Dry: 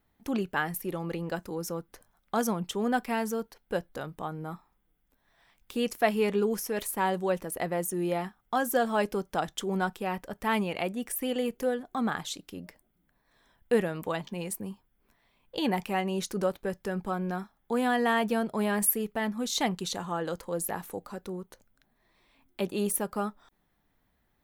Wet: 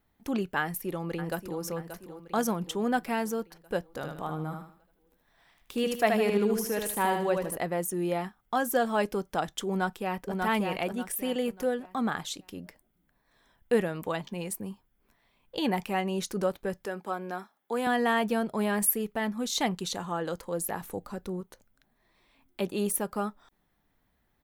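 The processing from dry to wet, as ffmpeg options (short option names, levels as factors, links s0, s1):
-filter_complex "[0:a]asplit=2[s0][s1];[s1]afade=t=in:st=0.6:d=0.01,afade=t=out:st=1.61:d=0.01,aecho=0:1:580|1160|1740|2320|2900|3480:0.298538|0.164196|0.0903078|0.0496693|0.0273181|0.015025[s2];[s0][s2]amix=inputs=2:normalize=0,asettb=1/sr,asplit=3[s3][s4][s5];[s3]atrim=end=3.894[s6];[s4]atrim=start=3.89:end=7.57,asetpts=PTS-STARTPTS,afade=t=in:d=0.004:c=qsin,afade=t=out:st=3.676:d=0.004:c=qsin,aecho=1:1:77|154|231|308:0.596|0.208|0.073|0.0255,atrim=end_sample=162288[s7];[s5]atrim=start=7.566[s8];[s6][s7]acrossfade=d=0.004:c1=hsin:c2=qsin[s9];[s9][s8]acrossfade=d=0.004:c1=qsin:c2=hsin,asplit=2[s10][s11];[s11]afade=t=in:st=9.68:d=0.01,afade=t=out:st=10.37:d=0.01,aecho=0:1:590|1180|1770|2360:0.707946|0.212384|0.0637151|0.0191145[s12];[s10][s12]amix=inputs=2:normalize=0,asettb=1/sr,asplit=3[s13][s14][s15];[s13]atrim=end=16.854[s16];[s14]atrim=start=16.85:end=17.87,asetpts=PTS-STARTPTS,afade=t=in:d=0.004:c=qsin,afade=t=out:st=1.016:d=0.004:c=qsin,highpass=320[s17];[s15]atrim=start=17.866[s18];[s16][s17]acrossfade=d=0.004:c1=hsin:c2=qsin[s19];[s19][s18]acrossfade=d=0.004:c1=qsin:c2=hsin,asettb=1/sr,asplit=3[s20][s21][s22];[s20]atrim=end=20.814[s23];[s21]atrim=start=20.81:end=21.41,asetpts=PTS-STARTPTS,afade=t=in:d=0.004:c=qsin,afade=t=out:st=0.596:d=0.004:c=qsin,lowshelf=f=160:g=8[s24];[s22]atrim=start=21.406[s25];[s23][s24]acrossfade=d=0.004:c1=hsin:c2=qsin[s26];[s26][s25]acrossfade=d=0.004:c1=qsin:c2=hsin"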